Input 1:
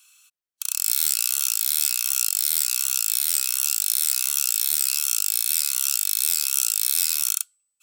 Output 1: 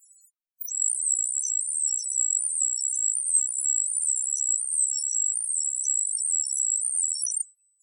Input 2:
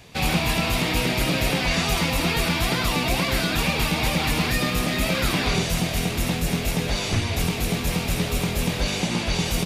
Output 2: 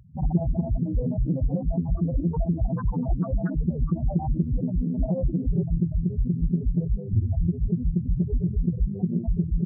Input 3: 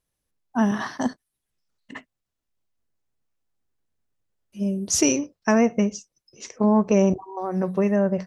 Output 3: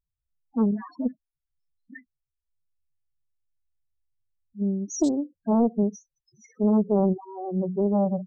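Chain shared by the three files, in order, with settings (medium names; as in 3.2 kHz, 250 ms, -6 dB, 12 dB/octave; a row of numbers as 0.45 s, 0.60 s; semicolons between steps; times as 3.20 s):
touch-sensitive phaser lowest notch 420 Hz, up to 3.3 kHz, full sweep at -23.5 dBFS; loudest bins only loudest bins 4; loudspeaker Doppler distortion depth 0.44 ms; peak normalisation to -12 dBFS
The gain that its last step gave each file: +13.0 dB, +3.0 dB, -0.5 dB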